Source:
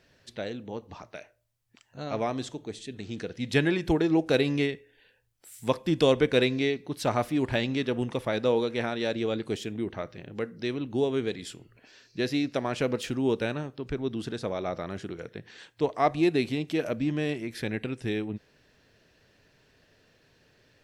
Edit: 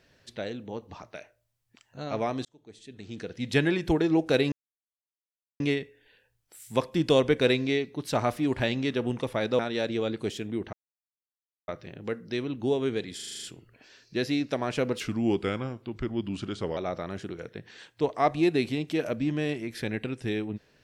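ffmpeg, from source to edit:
ffmpeg -i in.wav -filter_complex "[0:a]asplit=14[link_01][link_02][link_03][link_04][link_05][link_06][link_07][link_08][link_09][link_10][link_11][link_12][link_13][link_14];[link_01]atrim=end=2.45,asetpts=PTS-STARTPTS,afade=type=out:start_time=2.446:duration=0.004:curve=hsin[link_15];[link_02]atrim=start=2.45:end=4.52,asetpts=PTS-STARTPTS,afade=type=in:duration=0.99,afade=type=out:start_time=2.066:duration=0.004:curve=hsin,apad=pad_dur=1.08[link_16];[link_03]atrim=start=4.52:end=8.512,asetpts=PTS-STARTPTS,afade=type=in:duration=0.004:curve=hsin[link_17];[link_04]atrim=start=8.848:end=9.99,asetpts=PTS-STARTPTS,afade=type=out:start_time=1.138:duration=0.004:curve=hsin,apad=pad_dur=0.95[link_18];[link_05]atrim=start=9.99:end=11.502,asetpts=PTS-STARTPTS,afade=type=in:duration=0.004:curve=hsin[link_19];[link_06]atrim=start=11.458:end=11.502[link_20];[link_07]atrim=start=11.458:end=11.502[link_21];[link_08]atrim=start=11.458:end=11.502[link_22];[link_09]atrim=start=11.458:end=11.502[link_23];[link_10]atrim=start=11.458:end=11.502[link_24];[link_11]atrim=start=11.458:end=11.502[link_25];[link_12]atrim=start=11.458:end=13.034[link_26];[link_13]atrim=start=13.03:end=14.57,asetpts=PTS-STARTPTS,asetrate=38367,aresample=44100,atrim=end_sample=78062,asetpts=PTS-STARTPTS[link_27];[link_14]atrim=start=14.566[link_28];[link_15][link_16][link_17]concat=n=3:v=0:a=1[link_29];[link_18][link_19]concat=n=2:v=0:a=1[link_30];[link_29][link_30]acrossfade=duration=0.004:curve1=hsin:curve2=hsin[link_31];[link_31][link_20]acrossfade=duration=0.004:curve1=hsin:curve2=hsin[link_32];[link_32][link_21]acrossfade=duration=0.004:curve1=hsin:curve2=hsin[link_33];[link_33][link_22]acrossfade=duration=0.004:curve1=hsin:curve2=hsin[link_34];[link_34][link_23]acrossfade=duration=0.004:curve1=hsin:curve2=hsin[link_35];[link_35][link_24]acrossfade=duration=0.004:curve1=hsin:curve2=hsin[link_36];[link_36][link_25]acrossfade=duration=0.004:curve1=hsin:curve2=hsin[link_37];[link_37][link_26]acrossfade=duration=0.004:curve1=hsin:curve2=hsin[link_38];[link_38][link_27]acrossfade=duration=0.004:curve1=hsin:curve2=hsin[link_39];[link_39][link_28]acrossfade=duration=0.004:curve1=hsin:curve2=hsin" out.wav

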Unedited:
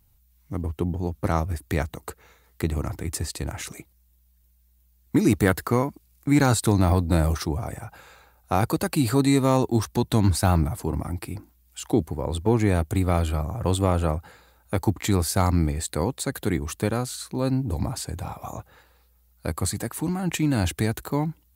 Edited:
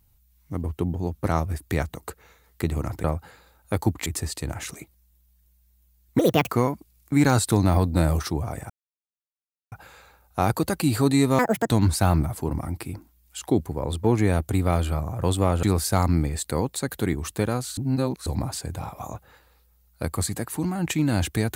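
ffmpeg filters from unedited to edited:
ffmpeg -i in.wav -filter_complex "[0:a]asplit=11[link_01][link_02][link_03][link_04][link_05][link_06][link_07][link_08][link_09][link_10][link_11];[link_01]atrim=end=3.042[link_12];[link_02]atrim=start=14.048:end=15.072[link_13];[link_03]atrim=start=3.038:end=5.174[link_14];[link_04]atrim=start=5.17:end=5.65,asetpts=PTS-STARTPTS,asetrate=68796,aresample=44100,atrim=end_sample=13569,asetpts=PTS-STARTPTS[link_15];[link_05]atrim=start=5.646:end=7.85,asetpts=PTS-STARTPTS,afade=type=out:start_time=2.2:duration=0.004:curve=hsin,apad=pad_dur=1.02[link_16];[link_06]atrim=start=7.85:end=9.524,asetpts=PTS-STARTPTS,afade=type=in:duration=0.004:curve=hsin[link_17];[link_07]atrim=start=9.52:end=10.12,asetpts=PTS-STARTPTS,asetrate=84231,aresample=44100,atrim=end_sample=13853,asetpts=PTS-STARTPTS[link_18];[link_08]atrim=start=10.116:end=14.052[link_19];[link_09]atrim=start=15.068:end=17.212[link_20];[link_10]atrim=start=17.208:end=17.702,asetpts=PTS-STARTPTS,areverse[link_21];[link_11]atrim=start=17.698[link_22];[link_12][link_13]acrossfade=duration=0.004:curve1=hsin:curve2=hsin[link_23];[link_23][link_14]acrossfade=duration=0.004:curve1=hsin:curve2=hsin[link_24];[link_24][link_15]acrossfade=duration=0.004:curve1=hsin:curve2=hsin[link_25];[link_16][link_17]concat=n=2:v=0:a=1[link_26];[link_25][link_26]acrossfade=duration=0.004:curve1=hsin:curve2=hsin[link_27];[link_27][link_18]acrossfade=duration=0.004:curve1=hsin:curve2=hsin[link_28];[link_28][link_19]acrossfade=duration=0.004:curve1=hsin:curve2=hsin[link_29];[link_29][link_20]acrossfade=duration=0.004:curve1=hsin:curve2=hsin[link_30];[link_30][link_21]acrossfade=duration=0.004:curve1=hsin:curve2=hsin[link_31];[link_31][link_22]acrossfade=duration=0.004:curve1=hsin:curve2=hsin" out.wav

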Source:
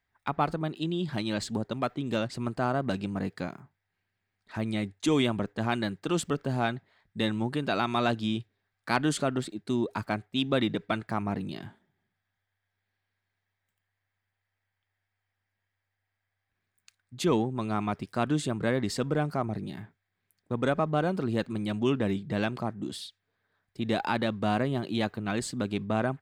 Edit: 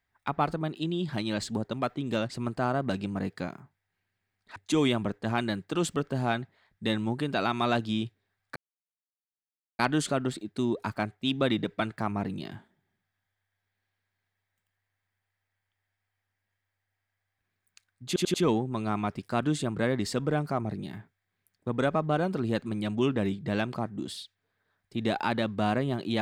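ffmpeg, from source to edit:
ffmpeg -i in.wav -filter_complex "[0:a]asplit=6[link_01][link_02][link_03][link_04][link_05][link_06];[link_01]atrim=end=4.562[link_07];[link_02]atrim=start=4.898:end=8.9,asetpts=PTS-STARTPTS,afade=type=out:start_time=3.998:duration=0.004:curve=hsin,apad=pad_dur=1.23[link_08];[link_03]atrim=start=8.9:end=17.272,asetpts=PTS-STARTPTS,afade=type=in:duration=0.004:curve=hsin[link_09];[link_04]atrim=start=17.178:end=17.272[link_10];[link_05]atrim=start=17.178:end=17.272[link_11];[link_06]atrim=start=17.178[link_12];[link_08][link_09]concat=n=2:v=0:a=1[link_13];[link_07][link_13]acrossfade=duration=0.004:curve1=hsin:curve2=hsin[link_14];[link_14][link_10]acrossfade=duration=0.004:curve1=hsin:curve2=hsin[link_15];[link_15][link_11]acrossfade=duration=0.004:curve1=hsin:curve2=hsin[link_16];[link_16][link_12]acrossfade=duration=0.004:curve1=hsin:curve2=hsin" out.wav

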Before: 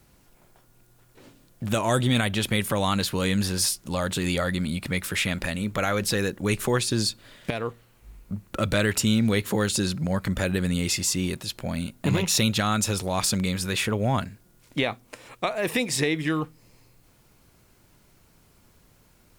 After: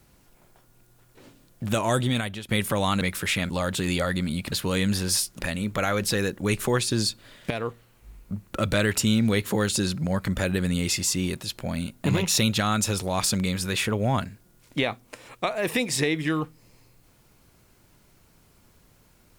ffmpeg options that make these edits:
ffmpeg -i in.wav -filter_complex "[0:a]asplit=6[link_01][link_02][link_03][link_04][link_05][link_06];[link_01]atrim=end=2.49,asetpts=PTS-STARTPTS,afade=type=out:start_time=1.73:duration=0.76:curve=qsin:silence=0.112202[link_07];[link_02]atrim=start=2.49:end=3.012,asetpts=PTS-STARTPTS,afade=type=in:duration=0.004:curve=hsin:silence=0.112202[link_08];[link_03]atrim=start=4.898:end=5.392[link_09];[link_04]atrim=start=3.878:end=4.902[link_10];[link_05]atrim=start=3.008:end=3.882[link_11];[link_06]atrim=start=5.388[link_12];[link_07][link_08]concat=n=2:v=0:a=1[link_13];[link_13][link_09]acrossfade=duration=0.004:curve1=hsin:curve2=hsin[link_14];[link_14][link_10]acrossfade=duration=0.004:curve1=hsin:curve2=hsin[link_15];[link_15][link_11]acrossfade=duration=0.004:curve1=hsin:curve2=hsin[link_16];[link_16][link_12]acrossfade=duration=0.004:curve1=hsin:curve2=hsin" out.wav

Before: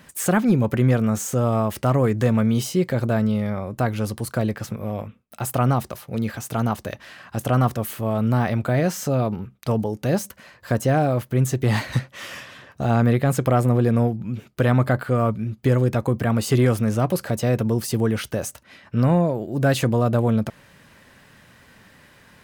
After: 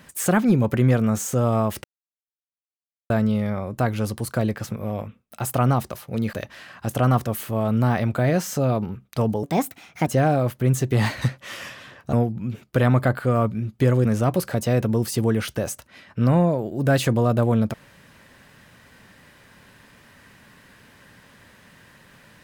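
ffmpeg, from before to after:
ffmpeg -i in.wav -filter_complex "[0:a]asplit=8[link_01][link_02][link_03][link_04][link_05][link_06][link_07][link_08];[link_01]atrim=end=1.84,asetpts=PTS-STARTPTS,afade=type=out:start_time=1.836:duration=0.004:curve=hsin[link_09];[link_02]atrim=start=1.84:end=3.1,asetpts=PTS-STARTPTS,volume=0[link_10];[link_03]atrim=start=3.1:end=6.332,asetpts=PTS-STARTPTS,afade=type=in:duration=0.004:curve=hsin[link_11];[link_04]atrim=start=6.828:end=9.934[link_12];[link_05]atrim=start=9.93:end=10.78,asetpts=PTS-STARTPTS,asetrate=58653,aresample=44100,atrim=end_sample=28184,asetpts=PTS-STARTPTS[link_13];[link_06]atrim=start=10.776:end=12.842[link_14];[link_07]atrim=start=13.968:end=15.892[link_15];[link_08]atrim=start=16.808[link_16];[link_09][link_10][link_11]concat=n=3:v=0:a=1[link_17];[link_17][link_12]acrossfade=duration=0.004:curve1=hsin:curve2=hsin[link_18];[link_18][link_13]acrossfade=duration=0.004:curve1=hsin:curve2=hsin[link_19];[link_19][link_14]acrossfade=duration=0.004:curve1=hsin:curve2=hsin[link_20];[link_20][link_15]acrossfade=duration=0.004:curve1=hsin:curve2=hsin[link_21];[link_21][link_16]acrossfade=duration=0.004:curve1=hsin:curve2=hsin" out.wav

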